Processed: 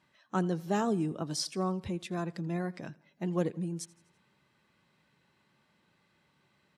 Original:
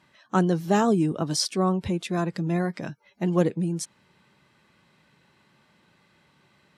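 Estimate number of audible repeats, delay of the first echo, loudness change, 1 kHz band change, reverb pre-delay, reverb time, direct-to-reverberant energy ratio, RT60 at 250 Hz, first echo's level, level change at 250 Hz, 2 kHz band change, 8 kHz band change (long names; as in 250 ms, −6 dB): 3, 83 ms, −8.5 dB, −8.5 dB, no reverb audible, no reverb audible, no reverb audible, no reverb audible, −23.0 dB, −8.5 dB, −8.5 dB, −8.5 dB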